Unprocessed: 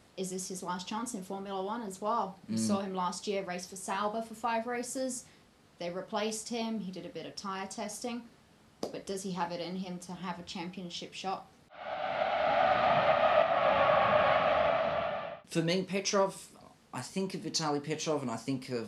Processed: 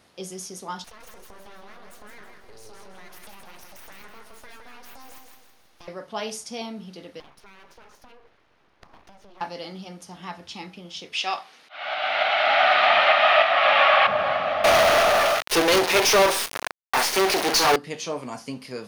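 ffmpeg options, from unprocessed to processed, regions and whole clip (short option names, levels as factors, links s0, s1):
-filter_complex "[0:a]asettb=1/sr,asplit=3[s0][s1][s2];[s0]atrim=end=0.844[s3];[s1]atrim=start=0.84:end=5.88,asetpts=PTS-STARTPTS,afade=t=in:d=0.004:c=qsin,afade=t=out:st=5.036:d=0.004:c=qsin,acompressor=threshold=0.00794:ratio=12:attack=3.2:release=140:knee=1:detection=peak,aeval=exprs='abs(val(0))':c=same,aecho=1:1:162|324|486|648|810:0.562|0.225|0.09|0.036|0.0144,atrim=end_sample=222264[s4];[s2]atrim=start=5.876[s5];[s3][s4]acrossfade=d=0.004:c1=hsin:c2=qsin[s6];[s6][s5]acrossfade=d=0.004:c1=qsin:c2=hsin,asettb=1/sr,asplit=3[s7][s8][s9];[s7]atrim=end=7.204[s10];[s8]atrim=start=7.2:end=9.41,asetpts=PTS-STARTPTS,afade=t=in:d=0.004:c=qsin,afade=t=out:st=2.206:d=0.004:c=qsin,lowpass=2500,acompressor=threshold=0.00631:ratio=16:attack=3.2:release=140:knee=1:detection=peak,aeval=exprs='abs(val(0))':c=same[s11];[s9]atrim=start=9.406[s12];[s10][s11]acrossfade=d=0.004:c1=hsin:c2=qsin[s13];[s13][s12]acrossfade=d=0.004:c1=qsin:c2=hsin,asettb=1/sr,asplit=3[s14][s15][s16];[s14]atrim=end=11.134[s17];[s15]atrim=start=11.13:end=14.07,asetpts=PTS-STARTPTS,afade=t=in:d=0.004:c=qsin,afade=t=out:st=2.936:d=0.004:c=qsin,highpass=290,equalizer=f=2800:w=0.44:g=13[s18];[s16]atrim=start=14.066[s19];[s17][s18]acrossfade=d=0.004:c1=hsin:c2=qsin[s20];[s20][s19]acrossfade=d=0.004:c1=qsin:c2=hsin,asettb=1/sr,asplit=3[s21][s22][s23];[s21]atrim=end=14.644[s24];[s22]atrim=start=14.64:end=17.76,asetpts=PTS-STARTPTS,afade=t=in:d=0.004:c=qsin,afade=t=out:st=3.116:d=0.004:c=qsin,highpass=f=390:t=q:w=2.2,acrusher=bits=5:dc=4:mix=0:aa=0.000001,asplit=2[s25][s26];[s26]highpass=f=720:p=1,volume=56.2,asoftclip=type=tanh:threshold=0.211[s27];[s25][s27]amix=inputs=2:normalize=0,lowpass=f=5400:p=1,volume=0.501[s28];[s23]atrim=start=17.756[s29];[s24][s28]acrossfade=d=0.004:c1=hsin:c2=qsin[s30];[s30][s29]acrossfade=d=0.004:c1=qsin:c2=hsin,lowshelf=f=390:g=-7,bandreject=f=7600:w=5.9,volume=1.68"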